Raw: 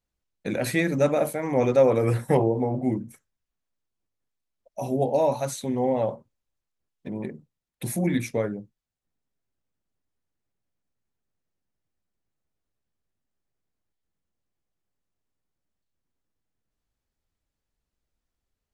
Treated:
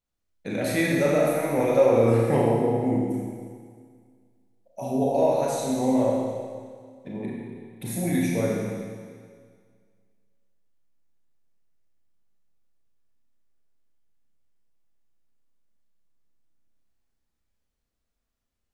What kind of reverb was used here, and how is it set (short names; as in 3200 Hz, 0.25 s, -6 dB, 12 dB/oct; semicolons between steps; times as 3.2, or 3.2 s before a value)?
Schroeder reverb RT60 1.9 s, combs from 27 ms, DRR -4 dB; gain -4 dB